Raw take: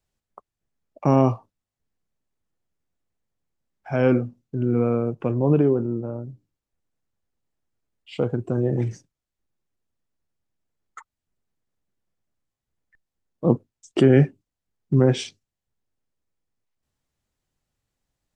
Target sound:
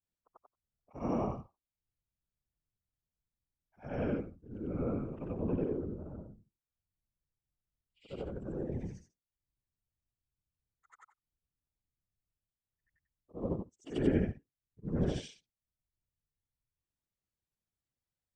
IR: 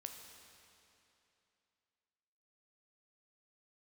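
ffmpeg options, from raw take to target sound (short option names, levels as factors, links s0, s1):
-af "afftfilt=real='re':imag='-im':win_size=8192:overlap=0.75,afftfilt=real='hypot(re,im)*cos(2*PI*random(0))':imag='hypot(re,im)*sin(2*PI*random(1))':win_size=512:overlap=0.75,volume=0.562"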